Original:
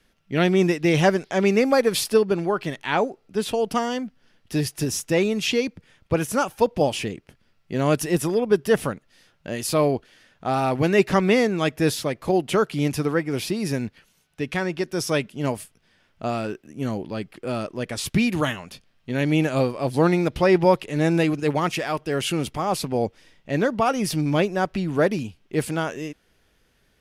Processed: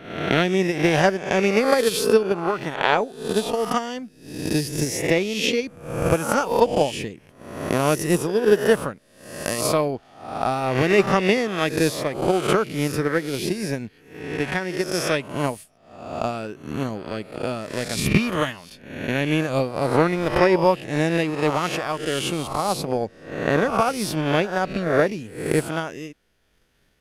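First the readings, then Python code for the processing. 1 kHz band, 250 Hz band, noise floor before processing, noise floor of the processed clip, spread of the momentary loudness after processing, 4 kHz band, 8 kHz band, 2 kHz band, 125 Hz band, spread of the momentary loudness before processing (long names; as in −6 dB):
+2.0 dB, −1.0 dB, −65 dBFS, −54 dBFS, 13 LU, +2.0 dB, +1.5 dB, +3.0 dB, −0.5 dB, 11 LU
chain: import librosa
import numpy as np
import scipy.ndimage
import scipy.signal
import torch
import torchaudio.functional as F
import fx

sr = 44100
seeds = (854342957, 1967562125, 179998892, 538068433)

y = fx.spec_swells(x, sr, rise_s=0.99)
y = fx.transient(y, sr, attack_db=11, sustain_db=-3)
y = y * librosa.db_to_amplitude(-4.0)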